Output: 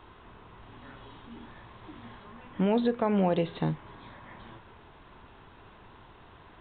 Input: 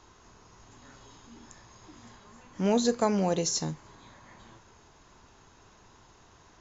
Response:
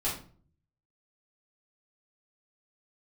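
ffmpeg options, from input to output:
-af "aresample=8000,aresample=44100,alimiter=limit=0.0841:level=0:latency=1:release=199,volume=1.78"

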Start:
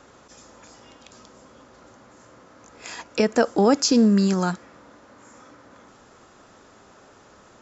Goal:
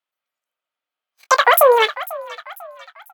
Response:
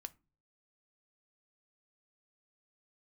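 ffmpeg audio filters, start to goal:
-filter_complex "[0:a]afwtdn=0.0282,lowpass=f=1200:p=1,aemphasis=mode=production:type=riaa,agate=range=0.0251:threshold=0.002:ratio=16:detection=peak,asetrate=107163,aresample=44100,asplit=2[s0][s1];[s1]adelay=20,volume=0.224[s2];[s0][s2]amix=inputs=2:normalize=0,asplit=2[s3][s4];[s4]asplit=3[s5][s6][s7];[s5]adelay=495,afreqshift=54,volume=0.106[s8];[s6]adelay=990,afreqshift=108,volume=0.0447[s9];[s7]adelay=1485,afreqshift=162,volume=0.0186[s10];[s8][s9][s10]amix=inputs=3:normalize=0[s11];[s3][s11]amix=inputs=2:normalize=0,alimiter=level_in=5.96:limit=0.891:release=50:level=0:latency=1,volume=0.891"

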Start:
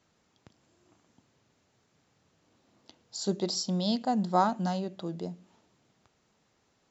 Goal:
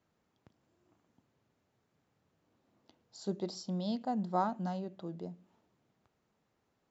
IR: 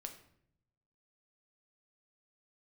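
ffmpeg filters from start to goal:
-af "highshelf=f=3000:g=-10.5,volume=0.501"

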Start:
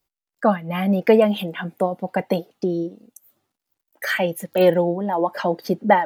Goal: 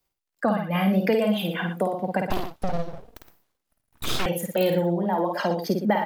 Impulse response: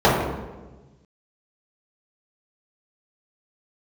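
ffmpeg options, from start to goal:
-filter_complex "[0:a]aecho=1:1:52.48|116.6:0.631|0.282,acrossover=split=170|3000[s0][s1][s2];[s1]acompressor=threshold=0.0794:ratio=4[s3];[s0][s3][s2]amix=inputs=3:normalize=0,asettb=1/sr,asplit=3[s4][s5][s6];[s4]atrim=end=2.304[s7];[s5]atrim=start=2.3:end=4.26,asetpts=PTS-STARTPTS,afade=t=in:d=0.004:c=qsin,afade=t=out:st=1.956:d=0.004:c=qsin,aeval=exprs='abs(val(0))':c=same[s8];[s6]atrim=start=4.256[s9];[s7][s8]acrossfade=d=0.004:c1=hsin:c2=qsin[s10];[s10][s9]acrossfade=d=0.004:c1=qsin:c2=hsin"

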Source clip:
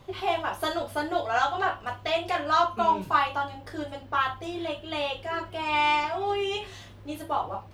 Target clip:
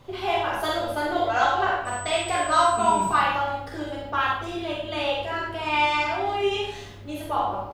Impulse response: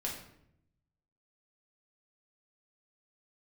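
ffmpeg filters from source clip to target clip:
-filter_complex "[0:a]asettb=1/sr,asplit=3[s0][s1][s2];[s0]atrim=end=1.854[s3];[s1]atrim=start=1.85:end=3.09,asetpts=PTS-STARTPTS,afade=t=in:d=0.004:c=qsin,afade=t=out:st=1.236:d=0.004:c=qsin,aeval=exprs='val(0)+0.00708*sin(2*PI*8000*n/s)':c=same[s4];[s2]atrim=start=3.086[s5];[s3][s4]acrossfade=d=0.004:c1=hsin:c2=qsin[s6];[s6][s5]acrossfade=d=0.004:c1=qsin:c2=hsin,asplit=2[s7][s8];[s8]adelay=30,volume=0.251[s9];[s7][s9]amix=inputs=2:normalize=0,asplit=2[s10][s11];[1:a]atrim=start_sample=2205,adelay=46[s12];[s11][s12]afir=irnorm=-1:irlink=0,volume=0.841[s13];[s10][s13]amix=inputs=2:normalize=0"

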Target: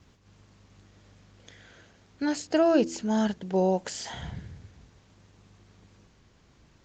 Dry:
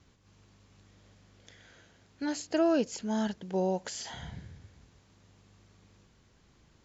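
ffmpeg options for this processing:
-filter_complex "[0:a]asplit=3[s0][s1][s2];[s0]afade=t=out:st=2.47:d=0.02[s3];[s1]bandreject=f=82.79:t=h:w=4,bandreject=f=165.58:t=h:w=4,bandreject=f=248.37:t=h:w=4,bandreject=f=331.16:t=h:w=4,afade=t=in:st=2.47:d=0.02,afade=t=out:st=4.16:d=0.02[s4];[s2]afade=t=in:st=4.16:d=0.02[s5];[s3][s4][s5]amix=inputs=3:normalize=0,volume=1.88" -ar 48000 -c:a libopus -b:a 20k

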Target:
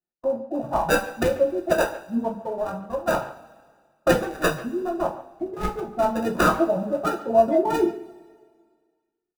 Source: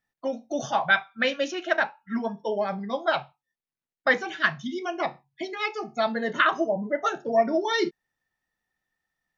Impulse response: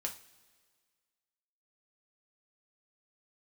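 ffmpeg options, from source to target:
-filter_complex "[0:a]afwtdn=0.0282,asettb=1/sr,asplit=3[s0][s1][s2];[s0]atrim=end=2.344[s3];[s1]atrim=start=2.34:end=3.13,asetpts=PTS-STARTPTS,afade=t=in:d=0.004:c=qsin,afade=t=out:st=0.786:d=0.004:c=qsin,tiltshelf=f=1200:g=-7.5[s4];[s2]atrim=start=3.126[s5];[s3][s4]acrossfade=d=0.004:c1=hsin:c2=qsin[s6];[s6][s5]acrossfade=d=0.004:c1=qsin:c2=hsin,acrossover=split=150|480|1300[s7][s8][s9][s10];[s10]acrusher=samples=41:mix=1:aa=0.000001[s11];[s7][s8][s9][s11]amix=inputs=4:normalize=0,asplit=2[s12][s13];[s13]adelay=140,highpass=300,lowpass=3400,asoftclip=type=hard:threshold=0.141,volume=0.178[s14];[s12][s14]amix=inputs=2:normalize=0[s15];[1:a]atrim=start_sample=2205[s16];[s15][s16]afir=irnorm=-1:irlink=0,volume=1.58"

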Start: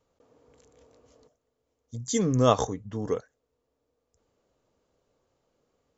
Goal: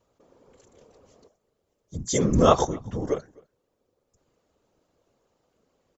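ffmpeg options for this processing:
-filter_complex "[0:a]afftfilt=real='hypot(re,im)*cos(2*PI*random(0))':imag='hypot(re,im)*sin(2*PI*random(1))':win_size=512:overlap=0.75,asplit=2[s0][s1];[s1]adelay=256.6,volume=0.0501,highshelf=f=4000:g=-5.77[s2];[s0][s2]amix=inputs=2:normalize=0,volume=2.82"

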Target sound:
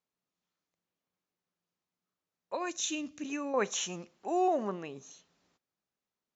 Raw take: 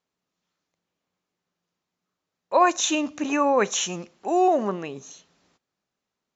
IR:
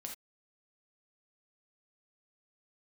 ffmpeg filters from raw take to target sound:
-filter_complex "[0:a]asettb=1/sr,asplit=3[s0][s1][s2];[s0]atrim=end=2.554[s3];[s1]atrim=start=2.55:end=3.54,asetpts=PTS-STARTPTS,afade=t=in:d=0.004:c=qsin,afade=t=out:st=0.986:d=0.004:c=qsin,equalizer=f=870:t=o:w=1.6:g=-14.5[s4];[s2]atrim=start=3.536[s5];[s3][s4]acrossfade=d=0.004:c1=hsin:c2=qsin[s6];[s6][s5]acrossfade=d=0.004:c1=qsin:c2=hsin,volume=0.376"

